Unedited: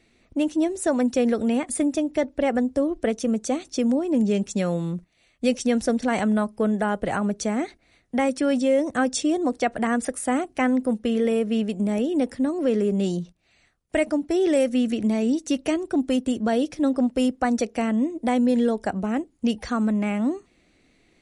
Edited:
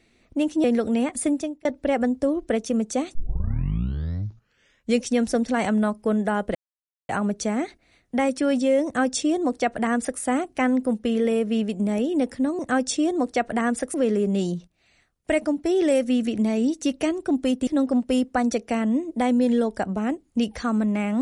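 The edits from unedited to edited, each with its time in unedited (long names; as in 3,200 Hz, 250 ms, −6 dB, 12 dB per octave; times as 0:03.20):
0:00.64–0:01.18: remove
0:01.86–0:02.19: fade out
0:03.69: tape start 1.89 s
0:07.09: splice in silence 0.54 s
0:08.85–0:10.20: duplicate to 0:12.59
0:16.32–0:16.74: remove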